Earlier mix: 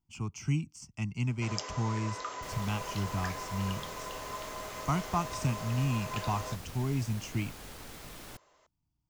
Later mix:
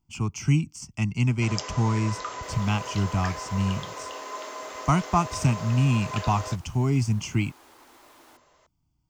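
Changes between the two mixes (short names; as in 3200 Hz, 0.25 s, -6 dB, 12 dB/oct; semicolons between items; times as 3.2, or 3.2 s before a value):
speech +8.5 dB; first sound +4.5 dB; second sound: add rippled Chebyshev high-pass 240 Hz, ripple 9 dB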